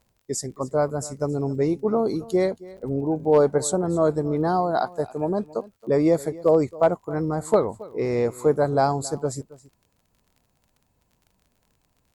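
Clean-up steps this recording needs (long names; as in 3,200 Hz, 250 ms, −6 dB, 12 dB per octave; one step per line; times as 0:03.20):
clipped peaks rebuilt −9 dBFS
click removal
repair the gap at 0:02.77, 6.5 ms
echo removal 273 ms −20 dB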